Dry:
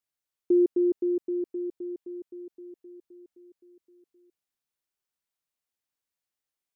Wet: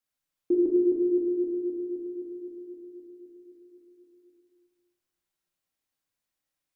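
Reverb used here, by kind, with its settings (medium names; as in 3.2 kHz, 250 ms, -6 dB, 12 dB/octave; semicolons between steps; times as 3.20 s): simulated room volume 630 m³, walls mixed, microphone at 2.2 m; trim -1.5 dB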